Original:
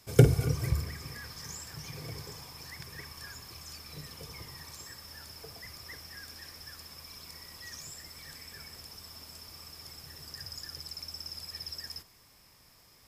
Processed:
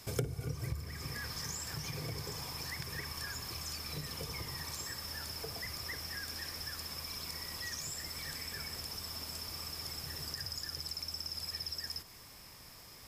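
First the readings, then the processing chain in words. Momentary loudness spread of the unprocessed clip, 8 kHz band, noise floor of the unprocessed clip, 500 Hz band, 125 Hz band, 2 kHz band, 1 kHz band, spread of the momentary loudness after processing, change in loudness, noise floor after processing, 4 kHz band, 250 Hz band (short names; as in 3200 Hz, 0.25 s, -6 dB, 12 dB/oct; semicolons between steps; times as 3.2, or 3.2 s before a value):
12 LU, +2.5 dB, -60 dBFS, -10.5 dB, -10.5 dB, +2.0 dB, +1.0 dB, 2 LU, -2.5 dB, -54 dBFS, +3.0 dB, -9.5 dB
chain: compressor 4:1, threshold -44 dBFS, peak gain reduction 25 dB; gain +6.5 dB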